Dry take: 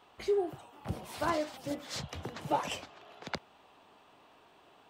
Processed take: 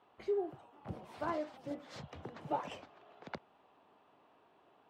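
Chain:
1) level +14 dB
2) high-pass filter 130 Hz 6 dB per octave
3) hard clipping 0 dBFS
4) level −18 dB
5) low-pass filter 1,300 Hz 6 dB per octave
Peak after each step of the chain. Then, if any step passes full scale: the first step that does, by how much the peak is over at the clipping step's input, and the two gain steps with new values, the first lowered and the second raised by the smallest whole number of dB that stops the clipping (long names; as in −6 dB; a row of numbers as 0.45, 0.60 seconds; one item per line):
−4.0, −4.0, −4.0, −22.0, −24.0 dBFS
no step passes full scale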